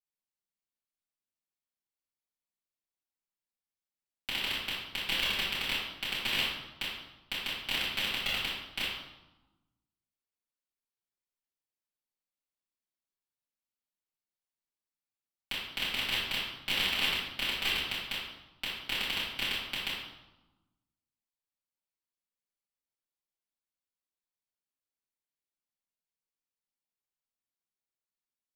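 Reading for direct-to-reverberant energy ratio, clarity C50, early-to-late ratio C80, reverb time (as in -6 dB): -11.5 dB, 0.0 dB, 3.5 dB, 1.0 s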